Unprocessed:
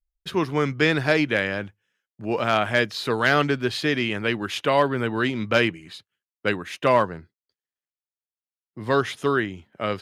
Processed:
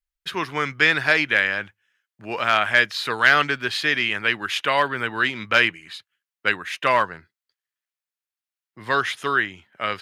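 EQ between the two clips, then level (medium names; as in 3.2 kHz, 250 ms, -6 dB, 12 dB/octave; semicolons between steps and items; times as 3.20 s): FFT filter 260 Hz 0 dB, 530 Hz +3 dB, 1.7 kHz +15 dB, 5.7 kHz +10 dB; -8.0 dB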